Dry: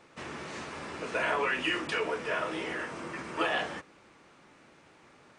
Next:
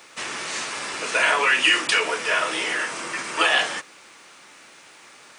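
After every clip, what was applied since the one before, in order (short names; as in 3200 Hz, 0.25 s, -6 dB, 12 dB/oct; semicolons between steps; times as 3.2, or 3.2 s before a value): tilt +4 dB/oct; gain +8.5 dB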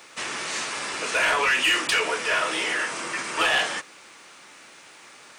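soft clip -15 dBFS, distortion -14 dB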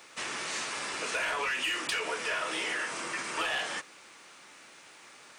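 compressor, threshold -24 dBFS, peak gain reduction 6 dB; gain -5 dB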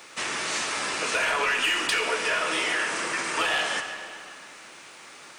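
digital reverb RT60 2.4 s, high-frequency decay 0.75×, pre-delay 30 ms, DRR 6.5 dB; gain +6 dB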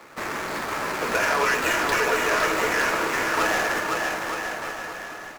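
median filter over 15 samples; on a send: bouncing-ball echo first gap 0.51 s, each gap 0.8×, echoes 5; on the sum: gain +4.5 dB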